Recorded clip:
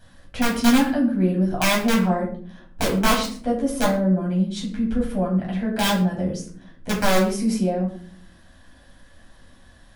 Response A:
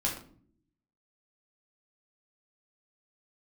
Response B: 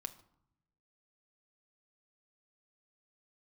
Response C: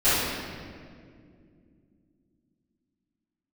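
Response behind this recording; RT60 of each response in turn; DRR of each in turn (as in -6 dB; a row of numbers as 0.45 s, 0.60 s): A; 0.55 s, 0.75 s, 2.3 s; -3.5 dB, 7.0 dB, -18.0 dB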